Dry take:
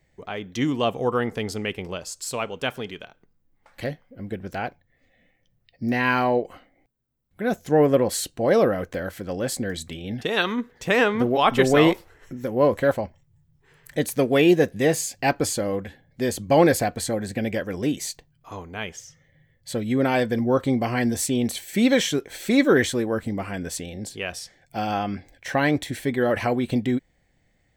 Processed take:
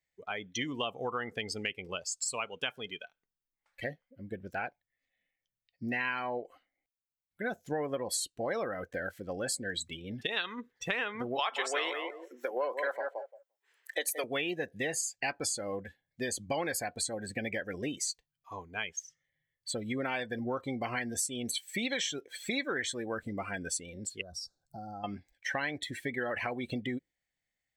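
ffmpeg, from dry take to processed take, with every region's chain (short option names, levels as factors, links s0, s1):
-filter_complex "[0:a]asettb=1/sr,asplit=3[s0][s1][s2];[s0]atrim=end=11.394[s3];[s1]atrim=start=11.39:end=14.24,asetpts=PTS-STARTPTS,afade=t=in:d=0.004:c=qsin,afade=t=out:st=2.846:d=0.004:c=qsin,highpass=f=400:w=0.5412,highpass=f=400:w=1.3066,asplit=2[s4][s5];[s5]adelay=173,lowpass=f=1800:p=1,volume=0.422,asplit=2[s6][s7];[s7]adelay=173,lowpass=f=1800:p=1,volume=0.19,asplit=2[s8][s9];[s9]adelay=173,lowpass=f=1800:p=1,volume=0.19[s10];[s4][s6][s8][s10]amix=inputs=4:normalize=0,atrim=end_sample=125685,acontrast=37[s11];[s2]atrim=start=14.236[s12];[s3][s11]acrossfade=d=0.004:c1=hsin:c2=qsin[s13];[s13][s12]acrossfade=d=0.004:c1=qsin:c2=hsin,asettb=1/sr,asplit=3[s14][s15][s16];[s14]atrim=end=24.214[s17];[s15]atrim=start=24.21:end=25.04,asetpts=PTS-STARTPTS,afade=t=in:d=0.004:c=qsin,afade=t=out:st=0.826:d=0.004:c=qsin,lowshelf=f=260:g=11,acompressor=threshold=0.0224:ratio=5:attack=3.2:release=140:knee=1:detection=peak,asuperstop=centerf=2400:order=20:qfactor=1.1[s18];[s16]atrim=start=25.036[s19];[s17][s18]acrossfade=d=0.004:c1=hsin:c2=qsin[s20];[s20][s19]acrossfade=d=0.004:c1=qsin:c2=hsin,afftdn=nr=20:nf=-33,tiltshelf=f=900:g=-8.5,acompressor=threshold=0.0355:ratio=5,volume=0.75"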